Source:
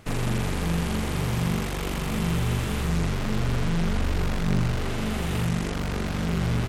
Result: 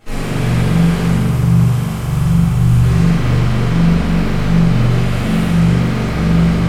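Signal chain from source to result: 1.05–2.83 graphic EQ 125/250/500/2000/4000 Hz +6/-11/-8/-8/-5 dB; hard clip -21.5 dBFS, distortion -15 dB; reverb RT60 2.8 s, pre-delay 4 ms, DRR -15 dB; gain -5 dB

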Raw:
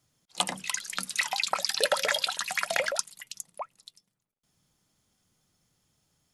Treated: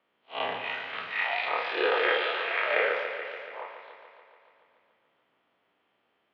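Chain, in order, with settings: time blur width 0.11 s; mistuned SSB -79 Hz 360–3000 Hz; warbling echo 0.143 s, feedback 70%, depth 53 cents, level -8.5 dB; gain +8.5 dB

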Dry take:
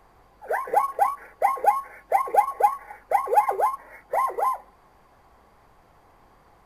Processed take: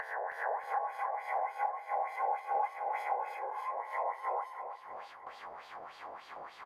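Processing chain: spectral swells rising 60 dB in 1.75 s; gate with hold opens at -44 dBFS; LFO band-pass sine 3.4 Hz 610–3900 Hz; upward compressor, threshold -27 dBFS; 3.67–4.28 transient shaper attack +1 dB, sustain -4 dB; compressor 3:1, threshold -30 dBFS, peak gain reduction 13 dB; 2.51–3.12 transient shaper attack -1 dB, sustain +7 dB; 3.31–3.6 spectral repair 560–1700 Hz; on a send: feedback echo 0.318 s, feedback 57%, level -9.5 dB; on the sum: gain -4.5 dB

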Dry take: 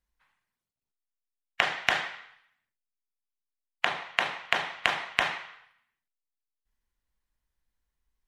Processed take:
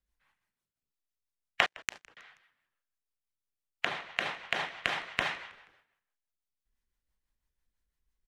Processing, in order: rotary speaker horn 6 Hz; 1.66–2.17 power-law curve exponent 3; frequency-shifting echo 0.16 s, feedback 49%, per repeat -82 Hz, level -23 dB

